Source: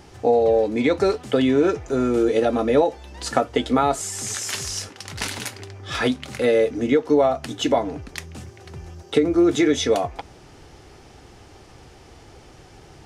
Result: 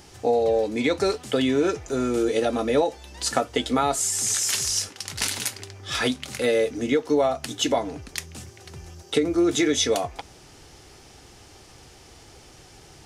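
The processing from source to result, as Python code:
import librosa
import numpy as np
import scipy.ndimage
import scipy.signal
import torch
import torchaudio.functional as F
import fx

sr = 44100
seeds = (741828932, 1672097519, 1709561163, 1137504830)

y = fx.high_shelf(x, sr, hz=3200.0, db=11.0)
y = y * librosa.db_to_amplitude(-4.0)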